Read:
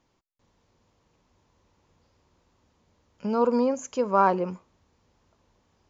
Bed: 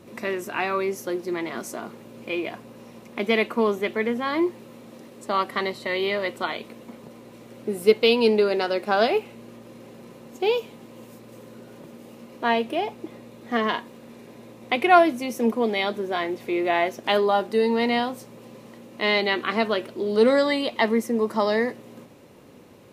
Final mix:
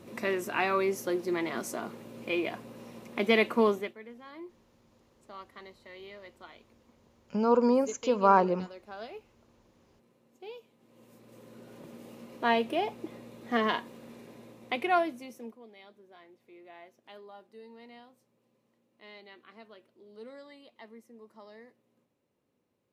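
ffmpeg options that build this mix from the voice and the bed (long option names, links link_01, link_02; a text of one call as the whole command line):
ffmpeg -i stem1.wav -i stem2.wav -filter_complex "[0:a]adelay=4100,volume=-1dB[link_01];[1:a]volume=16dB,afade=type=out:start_time=3.67:duration=0.27:silence=0.1,afade=type=in:start_time=10.77:duration=1.2:silence=0.11885,afade=type=out:start_time=14.07:duration=1.51:silence=0.0562341[link_02];[link_01][link_02]amix=inputs=2:normalize=0" out.wav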